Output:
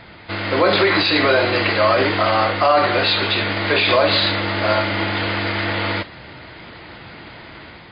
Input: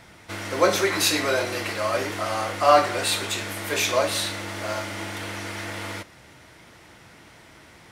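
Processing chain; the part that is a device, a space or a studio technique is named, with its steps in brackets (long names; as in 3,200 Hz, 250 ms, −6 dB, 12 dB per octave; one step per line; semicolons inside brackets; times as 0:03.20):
low-bitrate web radio (automatic gain control gain up to 4 dB; brickwall limiter −13.5 dBFS, peak gain reduction 10.5 dB; level +8 dB; MP3 24 kbit/s 11,025 Hz)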